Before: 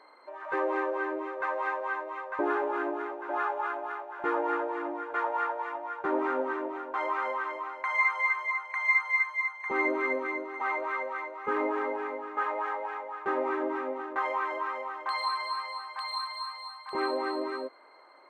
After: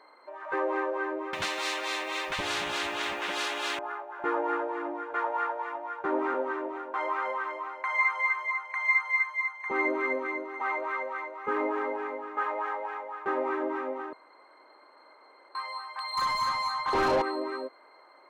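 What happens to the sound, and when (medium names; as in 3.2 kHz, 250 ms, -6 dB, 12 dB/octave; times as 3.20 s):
1.33–3.79 s: spectrum-flattening compressor 10:1
6.34–7.99 s: steep high-pass 270 Hz
14.13–15.55 s: room tone
16.17–17.22 s: overdrive pedal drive 27 dB, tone 1.3 kHz, clips at -16.5 dBFS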